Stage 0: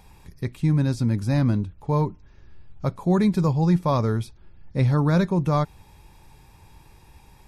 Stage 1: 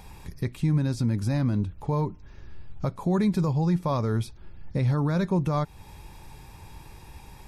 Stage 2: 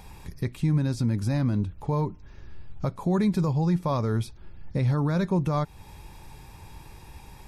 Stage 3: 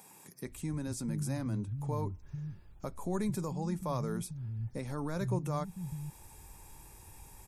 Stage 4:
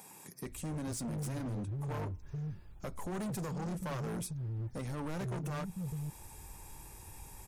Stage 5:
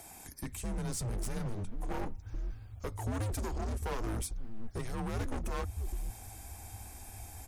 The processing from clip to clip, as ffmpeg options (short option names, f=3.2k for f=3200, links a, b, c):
-af "alimiter=limit=-21dB:level=0:latency=1:release=275,volume=5dB"
-af anull
-filter_complex "[0:a]highshelf=f=5.8k:t=q:w=1.5:g=10,acrossover=split=160[a][b];[a]adelay=450[c];[c][b]amix=inputs=2:normalize=0,volume=-8dB"
-af "asoftclip=type=hard:threshold=-38dB,volume=2.5dB"
-af "afreqshift=-110,volume=3dB"